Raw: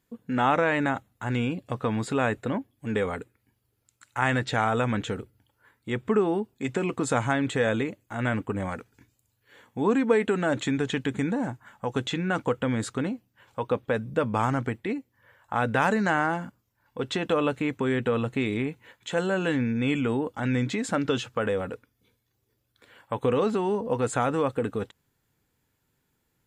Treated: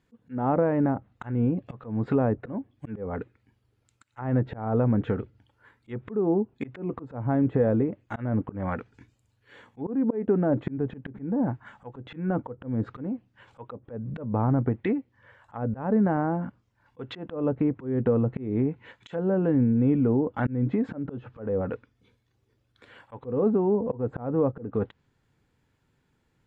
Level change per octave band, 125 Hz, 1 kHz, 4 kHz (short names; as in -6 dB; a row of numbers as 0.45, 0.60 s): +2.5 dB, -6.0 dB, under -15 dB